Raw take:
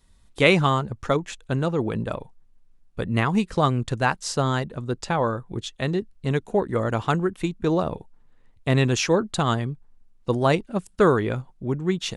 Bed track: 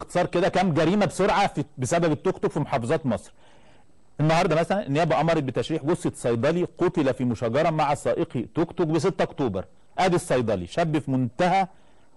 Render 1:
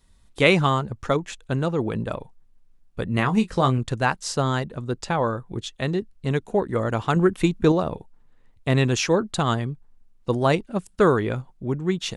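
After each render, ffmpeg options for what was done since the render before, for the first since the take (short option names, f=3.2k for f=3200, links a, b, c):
-filter_complex "[0:a]asettb=1/sr,asplit=3[a][b][c];[a]atrim=end=3.144[d];[b]atrim=start=3.14:end=3.78,asetpts=PTS-STARTPTS,afade=t=in:d=0.004:c=qsin,afade=t=out:st=0.636:d=0.004:c=qsin,asplit=2[e][f];[f]adelay=23,volume=-9dB[g];[e][g]amix=inputs=2:normalize=0,atrim=end_sample=28224[h];[c]atrim=start=3.776[i];[d][h]acrossfade=d=0.004:c1=hsin:c2=qsin[j];[j][i]acrossfade=d=0.004:c1=qsin:c2=hsin,asettb=1/sr,asplit=3[k][l][m];[k]atrim=end=7.164[n];[l]atrim=start=7.16:end=7.72,asetpts=PTS-STARTPTS,afade=t=in:d=0.004:c=qsin,afade=t=out:st=0.556:d=0.004:c=qsin,acontrast=50[o];[m]atrim=start=7.716[p];[n][o]acrossfade=d=0.004:c1=hsin:c2=qsin[q];[q][p]acrossfade=d=0.004:c1=qsin:c2=hsin"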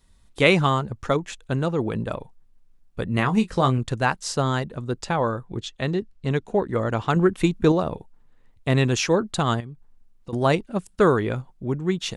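-filter_complex "[0:a]asettb=1/sr,asplit=3[a][b][c];[a]atrim=end=5.464[d];[b]atrim=start=5.46:end=7.36,asetpts=PTS-STARTPTS,afade=t=in:d=0.004:c=qsin,afade=t=out:st=1.896:d=0.004:c=qsin,lowpass=7.6k[e];[c]atrim=start=7.356[f];[d][e]acrossfade=d=0.004:c1=hsin:c2=qsin[g];[g][f]acrossfade=d=0.004:c1=qsin:c2=hsin,asettb=1/sr,asplit=3[h][i][j];[h]atrim=end=9.604[k];[i]atrim=start=9.6:end=10.33,asetpts=PTS-STARTPTS,afade=t=in:d=0.004:c=qsin,afade=t=out:st=0.726:d=0.004:c=qsin,acompressor=threshold=-38dB:ratio=2.5:attack=3.2:release=140:knee=1:detection=peak[l];[j]atrim=start=10.326[m];[k][l]acrossfade=d=0.004:c1=hsin:c2=qsin[n];[n][m]acrossfade=d=0.004:c1=qsin:c2=hsin"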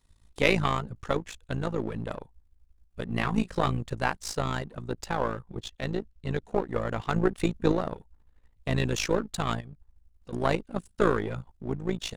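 -af "aeval=exprs='if(lt(val(0),0),0.447*val(0),val(0))':c=same,tremolo=f=55:d=0.788"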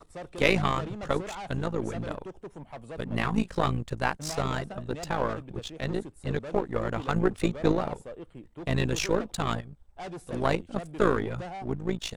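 -filter_complex "[1:a]volume=-18dB[a];[0:a][a]amix=inputs=2:normalize=0"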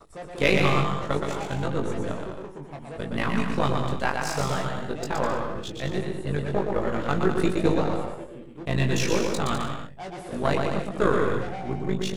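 -filter_complex "[0:a]asplit=2[a][b];[b]adelay=21,volume=-5dB[c];[a][c]amix=inputs=2:normalize=0,aecho=1:1:120|204|262.8|304|332.8:0.631|0.398|0.251|0.158|0.1"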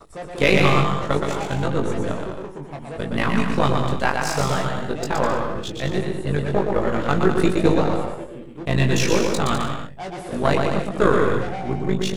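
-af "volume=5dB,alimiter=limit=-2dB:level=0:latency=1"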